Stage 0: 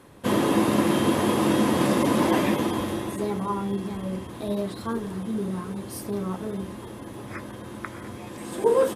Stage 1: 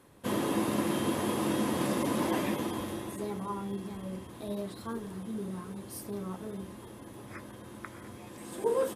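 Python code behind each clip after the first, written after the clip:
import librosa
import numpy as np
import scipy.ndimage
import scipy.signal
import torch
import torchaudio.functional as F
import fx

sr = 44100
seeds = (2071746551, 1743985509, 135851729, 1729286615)

y = fx.high_shelf(x, sr, hz=7700.0, db=5.5)
y = F.gain(torch.from_numpy(y), -8.5).numpy()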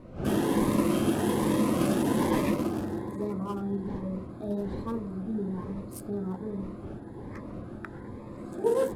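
y = fx.wiener(x, sr, points=15)
y = fx.dmg_wind(y, sr, seeds[0], corner_hz=390.0, level_db=-48.0)
y = fx.notch_cascade(y, sr, direction='rising', hz=1.2)
y = F.gain(torch.from_numpy(y), 5.5).numpy()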